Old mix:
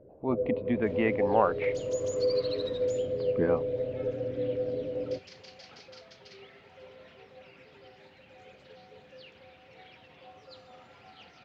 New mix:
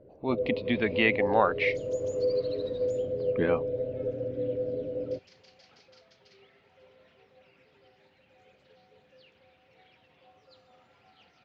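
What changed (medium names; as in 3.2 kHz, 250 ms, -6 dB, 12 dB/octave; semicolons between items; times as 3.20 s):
speech: remove low-pass 1.3 kHz 12 dB/octave; second sound -8.0 dB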